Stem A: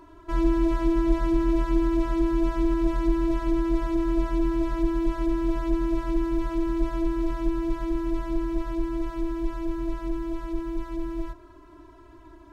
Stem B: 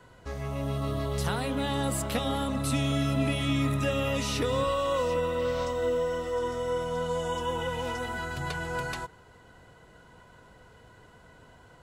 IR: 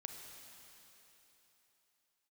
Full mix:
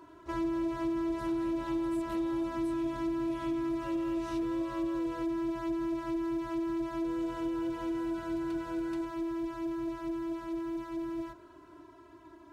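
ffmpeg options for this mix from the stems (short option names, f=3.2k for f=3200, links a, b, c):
-filter_complex "[0:a]highpass=120,volume=-3dB[a];[1:a]acompressor=threshold=-30dB:ratio=6,volume=-15dB,asplit=3[b][c][d];[b]atrim=end=5.23,asetpts=PTS-STARTPTS,afade=t=out:st=5.226:d=0.004:c=hsin[e];[c]atrim=start=5.23:end=7.04,asetpts=PTS-STARTPTS,volume=0[f];[d]atrim=start=7.04,asetpts=PTS-STARTPTS,afade=t=in:d=0.004:c=hsin[g];[e][f][g]concat=n=3:v=0:a=1[h];[a][h]amix=inputs=2:normalize=0,acompressor=threshold=-31dB:ratio=3"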